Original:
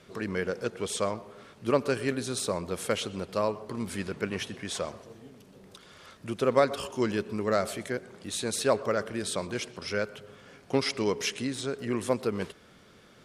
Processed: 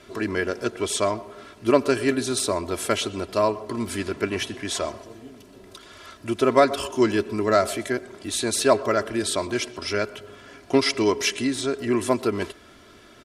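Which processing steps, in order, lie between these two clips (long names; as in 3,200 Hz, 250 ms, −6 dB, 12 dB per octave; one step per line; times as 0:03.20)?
comb filter 3 ms, depth 66%
level +5.5 dB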